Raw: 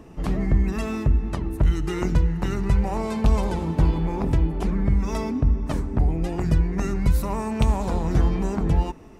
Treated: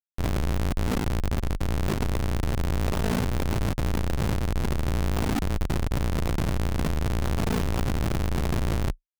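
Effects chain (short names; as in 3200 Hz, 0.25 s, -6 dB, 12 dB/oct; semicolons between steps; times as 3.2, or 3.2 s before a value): Schmitt trigger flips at -23.5 dBFS; ring modulator 28 Hz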